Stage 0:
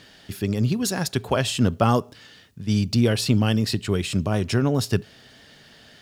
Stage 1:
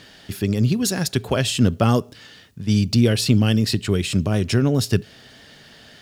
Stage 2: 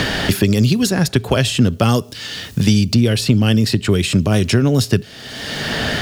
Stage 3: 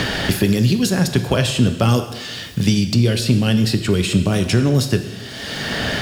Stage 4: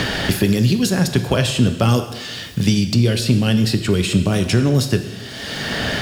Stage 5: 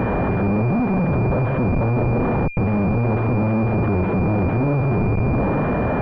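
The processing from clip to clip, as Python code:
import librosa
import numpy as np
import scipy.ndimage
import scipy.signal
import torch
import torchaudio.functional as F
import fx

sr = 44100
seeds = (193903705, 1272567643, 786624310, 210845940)

y1 = fx.dynamic_eq(x, sr, hz=940.0, q=1.1, threshold_db=-38.0, ratio=4.0, max_db=-7)
y1 = y1 * librosa.db_to_amplitude(3.5)
y2 = fx.band_squash(y1, sr, depth_pct=100)
y2 = y2 * librosa.db_to_amplitude(4.0)
y3 = fx.rev_plate(y2, sr, seeds[0], rt60_s=1.2, hf_ratio=1.0, predelay_ms=0, drr_db=7.0)
y3 = y3 * librosa.db_to_amplitude(-2.5)
y4 = y3
y5 = fx.schmitt(y4, sr, flips_db=-26.5)
y5 = fx.pwm(y5, sr, carrier_hz=2400.0)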